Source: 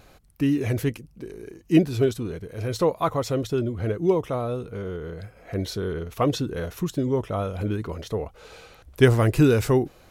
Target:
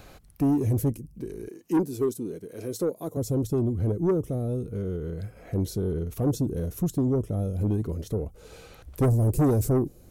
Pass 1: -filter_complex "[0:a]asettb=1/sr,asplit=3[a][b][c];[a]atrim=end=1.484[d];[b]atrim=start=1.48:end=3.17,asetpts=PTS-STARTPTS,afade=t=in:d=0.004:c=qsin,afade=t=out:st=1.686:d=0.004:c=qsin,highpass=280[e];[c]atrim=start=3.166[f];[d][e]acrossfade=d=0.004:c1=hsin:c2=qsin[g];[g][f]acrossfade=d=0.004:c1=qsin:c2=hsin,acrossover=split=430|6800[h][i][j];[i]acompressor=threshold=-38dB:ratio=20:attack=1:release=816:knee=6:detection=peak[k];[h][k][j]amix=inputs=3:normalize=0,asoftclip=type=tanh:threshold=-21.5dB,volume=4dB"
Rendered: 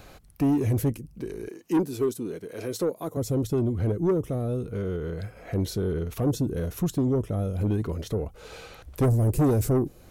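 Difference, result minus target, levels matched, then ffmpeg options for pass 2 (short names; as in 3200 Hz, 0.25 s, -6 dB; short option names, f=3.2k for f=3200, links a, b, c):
compressor: peak gain reduction -9.5 dB
-filter_complex "[0:a]asettb=1/sr,asplit=3[a][b][c];[a]atrim=end=1.484[d];[b]atrim=start=1.48:end=3.17,asetpts=PTS-STARTPTS,afade=t=in:d=0.004:c=qsin,afade=t=out:st=1.686:d=0.004:c=qsin,highpass=280[e];[c]atrim=start=3.166[f];[d][e]acrossfade=d=0.004:c1=hsin:c2=qsin[g];[g][f]acrossfade=d=0.004:c1=qsin:c2=hsin,acrossover=split=430|6800[h][i][j];[i]acompressor=threshold=-48dB:ratio=20:attack=1:release=816:knee=6:detection=peak[k];[h][k][j]amix=inputs=3:normalize=0,asoftclip=type=tanh:threshold=-21.5dB,volume=4dB"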